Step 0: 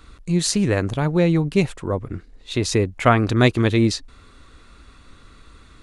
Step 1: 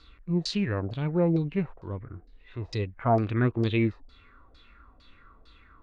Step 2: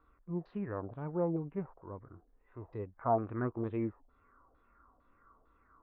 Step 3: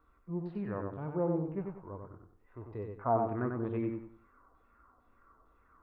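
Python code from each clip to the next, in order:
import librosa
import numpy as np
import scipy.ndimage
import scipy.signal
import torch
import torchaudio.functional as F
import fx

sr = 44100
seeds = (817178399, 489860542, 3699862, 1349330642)

y1 = fx.hpss(x, sr, part='percussive', gain_db=-13)
y1 = fx.filter_lfo_lowpass(y1, sr, shape='saw_down', hz=2.2, low_hz=600.0, high_hz=4900.0, q=4.3)
y1 = F.gain(torch.from_numpy(y1), -7.0).numpy()
y2 = fx.ladder_lowpass(y1, sr, hz=1400.0, resonance_pct=30)
y2 = fx.low_shelf(y2, sr, hz=190.0, db=-9.0)
y3 = fx.echo_feedback(y2, sr, ms=94, feedback_pct=31, wet_db=-4.5)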